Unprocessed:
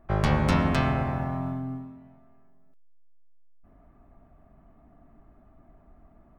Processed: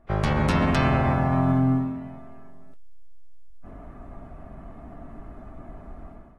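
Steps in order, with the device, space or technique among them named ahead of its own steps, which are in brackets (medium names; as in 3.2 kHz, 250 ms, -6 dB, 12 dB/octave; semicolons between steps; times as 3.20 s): low-bitrate web radio (level rider gain up to 14.5 dB; peak limiter -12.5 dBFS, peak gain reduction 8.5 dB; AAC 32 kbps 32 kHz)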